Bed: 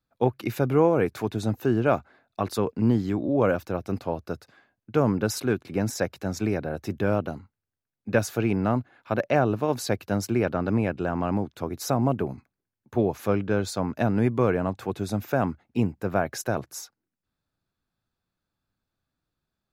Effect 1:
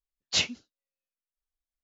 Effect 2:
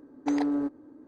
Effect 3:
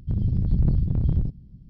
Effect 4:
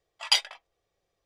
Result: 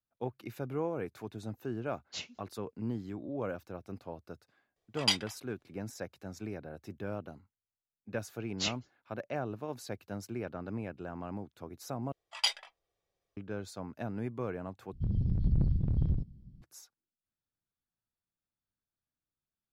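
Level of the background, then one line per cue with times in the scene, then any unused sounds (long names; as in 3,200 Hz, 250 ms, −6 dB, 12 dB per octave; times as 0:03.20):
bed −14.5 dB
0:01.80: mix in 1 −16 dB
0:04.76: mix in 4 −5.5 dB
0:08.27: mix in 1 −8.5 dB + harmonic-percussive split with one part muted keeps percussive
0:12.12: overwrite with 4 −7 dB
0:14.93: overwrite with 3 −7 dB
not used: 2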